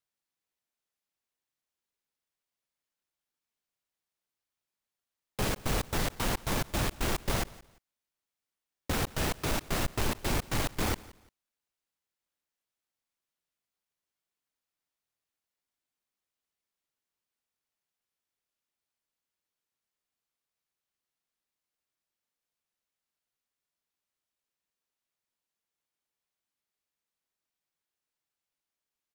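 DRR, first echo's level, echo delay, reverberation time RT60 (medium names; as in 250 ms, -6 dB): no reverb, -21.0 dB, 173 ms, no reverb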